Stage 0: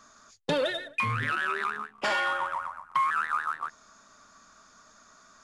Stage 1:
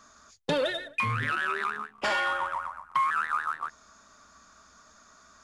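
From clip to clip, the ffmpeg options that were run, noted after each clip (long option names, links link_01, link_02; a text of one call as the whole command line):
ffmpeg -i in.wav -af "equalizer=frequency=68:width_type=o:width=0.26:gain=14" out.wav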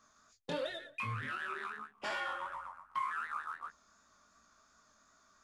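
ffmpeg -i in.wav -af "flanger=delay=17.5:depth=5.9:speed=2.7,volume=-8dB" out.wav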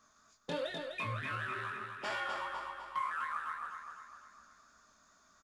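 ffmpeg -i in.wav -af "aecho=1:1:252|504|756|1008|1260|1512:0.501|0.251|0.125|0.0626|0.0313|0.0157" out.wav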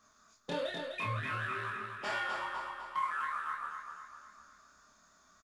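ffmpeg -i in.wav -filter_complex "[0:a]asplit=2[link_01][link_02];[link_02]adelay=28,volume=-4dB[link_03];[link_01][link_03]amix=inputs=2:normalize=0" out.wav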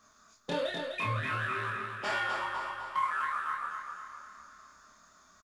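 ffmpeg -i in.wav -af "aecho=1:1:559|1118|1677:0.133|0.0507|0.0193,volume=3.5dB" out.wav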